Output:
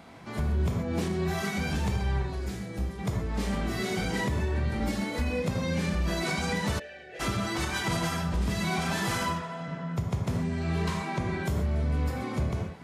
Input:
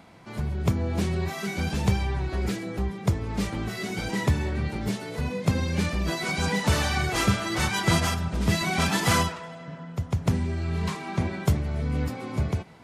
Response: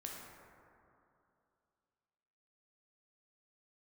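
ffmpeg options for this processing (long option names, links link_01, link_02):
-filter_complex "[0:a]asettb=1/sr,asplit=3[link_01][link_02][link_03];[link_01]atrim=end=2.224[link_04];[link_02]atrim=start=2.22:end=2.99,asetpts=PTS-STARTPTS,afade=type=in:duration=0.004:curve=qsin,afade=type=out:start_time=0.766:duration=0.004:curve=qsin,acrossover=split=170|4200[link_05][link_06][link_07];[link_05]acompressor=threshold=-34dB:ratio=4[link_08];[link_06]acompressor=threshold=-42dB:ratio=4[link_09];[link_07]acompressor=threshold=-51dB:ratio=4[link_10];[link_08][link_09][link_10]amix=inputs=3:normalize=0[link_11];[link_03]atrim=start=2.986[link_12];[link_04][link_11]acrossfade=duration=0.004:curve1=hsin:curve2=qsin[link_13];[link_13][link_12]acrossfade=duration=0.004:curve1=qsin:curve2=hsin,asettb=1/sr,asplit=3[link_14][link_15][link_16];[link_14]atrim=end=4.804[link_17];[link_15]atrim=start=4.8:end=5.4,asetpts=PTS-STARTPTS,afade=type=in:duration=0.004:curve=qsin,afade=type=out:start_time=0.596:duration=0.004:curve=qsin,aecho=1:1:3.6:0.67,atrim=end_sample=26460[link_18];[link_16]atrim=start=5.396[link_19];[link_17][link_18]acrossfade=duration=0.004:curve1=hsin:curve2=qsin[link_20];[link_20][link_19]acrossfade=duration=0.004:curve1=qsin:curve2=hsin[link_21];[1:a]atrim=start_sample=2205,atrim=end_sample=6174[link_22];[link_21][link_22]afir=irnorm=-1:irlink=0,alimiter=level_in=2dB:limit=-24dB:level=0:latency=1:release=350,volume=-2dB,asplit=3[link_23][link_24][link_25];[link_23]afade=type=out:start_time=6.78:duration=0.02[link_26];[link_24]asplit=3[link_27][link_28][link_29];[link_27]bandpass=frequency=530:width_type=q:width=8,volume=0dB[link_30];[link_28]bandpass=frequency=1840:width_type=q:width=8,volume=-6dB[link_31];[link_29]bandpass=frequency=2480:width_type=q:width=8,volume=-9dB[link_32];[link_30][link_31][link_32]amix=inputs=3:normalize=0,afade=type=in:start_time=6.78:duration=0.02,afade=type=out:start_time=7.19:duration=0.02[link_33];[link_25]afade=type=in:start_time=7.19:duration=0.02[link_34];[link_26][link_33][link_34]amix=inputs=3:normalize=0,volume=6.5dB"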